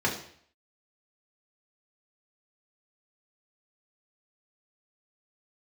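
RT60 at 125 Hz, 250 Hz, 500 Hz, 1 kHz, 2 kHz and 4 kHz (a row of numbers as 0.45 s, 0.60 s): 0.65 s, 0.55 s, 0.55 s, 0.60 s, 0.60 s, 0.60 s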